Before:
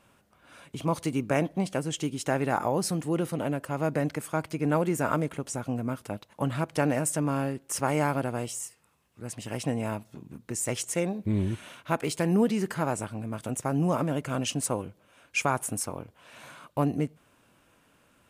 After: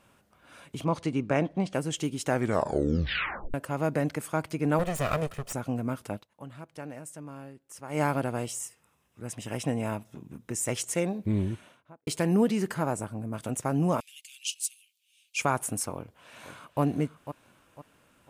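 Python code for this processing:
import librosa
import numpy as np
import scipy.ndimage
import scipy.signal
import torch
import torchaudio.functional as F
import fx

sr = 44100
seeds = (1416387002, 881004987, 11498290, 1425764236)

y = fx.air_absorb(x, sr, metres=87.0, at=(0.84, 1.74))
y = fx.lower_of_two(y, sr, delay_ms=1.6, at=(4.79, 5.53))
y = fx.notch(y, sr, hz=4400.0, q=7.6, at=(8.57, 10.74))
y = fx.studio_fade_out(y, sr, start_s=11.26, length_s=0.81)
y = fx.peak_eq(y, sr, hz=3100.0, db=fx.line((12.72, -2.5), (13.33, -12.5)), octaves=2.0, at=(12.72, 13.33), fade=0.02)
y = fx.steep_highpass(y, sr, hz=2600.0, slope=48, at=(14.0, 15.39))
y = fx.echo_throw(y, sr, start_s=15.95, length_s=0.86, ms=500, feedback_pct=35, wet_db=-10.5)
y = fx.edit(y, sr, fx.tape_stop(start_s=2.28, length_s=1.26),
    fx.fade_down_up(start_s=6.15, length_s=1.86, db=-15.0, fade_s=0.12), tone=tone)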